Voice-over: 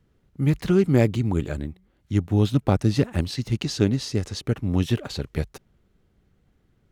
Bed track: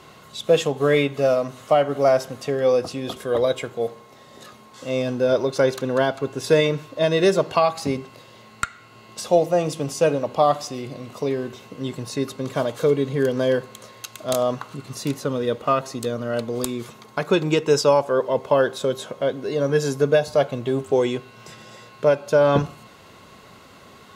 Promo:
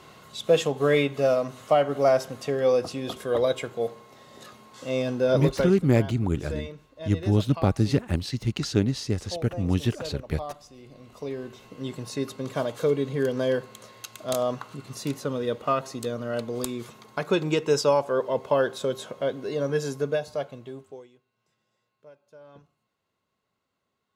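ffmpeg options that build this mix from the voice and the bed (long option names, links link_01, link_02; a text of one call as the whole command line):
ffmpeg -i stem1.wav -i stem2.wav -filter_complex "[0:a]adelay=4950,volume=-2dB[link_01];[1:a]volume=11dB,afade=type=out:start_time=5.49:duration=0.28:silence=0.16788,afade=type=in:start_time=10.73:duration=1.21:silence=0.199526,afade=type=out:start_time=19.47:duration=1.61:silence=0.0375837[link_02];[link_01][link_02]amix=inputs=2:normalize=0" out.wav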